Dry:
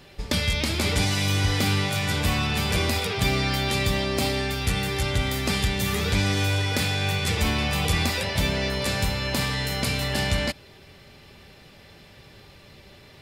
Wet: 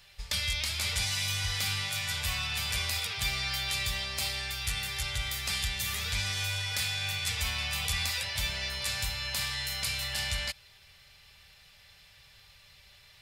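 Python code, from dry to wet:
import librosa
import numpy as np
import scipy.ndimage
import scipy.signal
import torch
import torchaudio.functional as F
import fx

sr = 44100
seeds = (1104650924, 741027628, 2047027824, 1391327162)

y = fx.tone_stack(x, sr, knobs='10-0-10')
y = y * 10.0 ** (-1.5 / 20.0)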